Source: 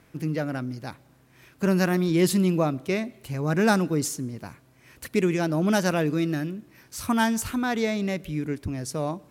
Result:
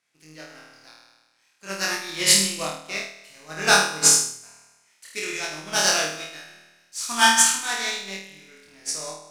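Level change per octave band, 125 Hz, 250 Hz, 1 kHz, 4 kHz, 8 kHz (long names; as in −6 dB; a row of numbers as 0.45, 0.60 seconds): −14.5, −13.0, +4.5, +14.0, +15.5 decibels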